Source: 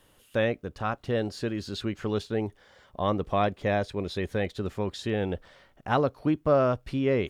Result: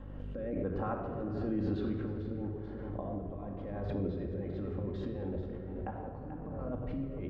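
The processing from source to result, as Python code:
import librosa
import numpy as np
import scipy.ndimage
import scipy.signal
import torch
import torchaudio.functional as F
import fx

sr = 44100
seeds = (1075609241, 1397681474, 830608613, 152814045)

y = scipy.signal.sosfilt(scipy.signal.butter(2, 1100.0, 'lowpass', fs=sr, output='sos'), x)
y = fx.peak_eq(y, sr, hz=130.0, db=-6.5, octaves=0.27)
y = fx.over_compress(y, sr, threshold_db=-32.0, ratio=-0.5)
y = fx.add_hum(y, sr, base_hz=50, snr_db=17)
y = fx.echo_multitap(y, sr, ms=(96, 437), db=(-17.5, -10.5))
y = fx.rotary_switch(y, sr, hz=1.0, then_hz=6.7, switch_at_s=4.5)
y = fx.room_shoebox(y, sr, seeds[0], volume_m3=2800.0, walls='mixed', distance_m=2.2)
y = fx.pre_swell(y, sr, db_per_s=22.0)
y = F.gain(torch.from_numpy(y), -6.5).numpy()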